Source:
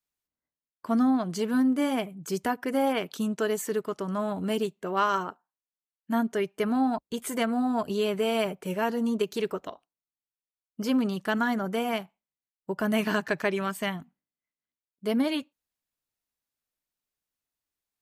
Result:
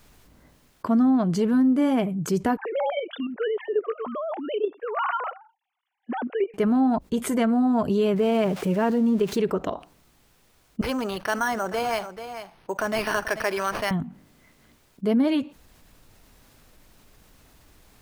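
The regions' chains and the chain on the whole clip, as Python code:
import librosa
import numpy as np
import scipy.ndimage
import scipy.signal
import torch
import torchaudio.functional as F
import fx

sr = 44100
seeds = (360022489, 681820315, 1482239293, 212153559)

y = fx.chain(x, sr, fx.sine_speech(),
    fx.level_steps(step_db=10),
    fx.highpass(hz=470.0, slope=12), at=(2.57, 6.54))
y = fx.chain(y, sr, fx.crossing_spikes(level_db=-29.5),
    fx.lowpass(hz=3900.0, slope=6), at=(8.16, 9.38))
y = fx.chain(y, sr, fx.highpass(hz=680.0, slope=12),
    fx.echo_single(ms=437, db=-20.5),
    fx.resample_bad(factor=6, down='none', up='hold'), at=(10.81, 13.91))
y = fx.tilt_eq(y, sr, slope=-2.5)
y = fx.env_flatten(y, sr, amount_pct=50)
y = y * librosa.db_to_amplitude(-1.5)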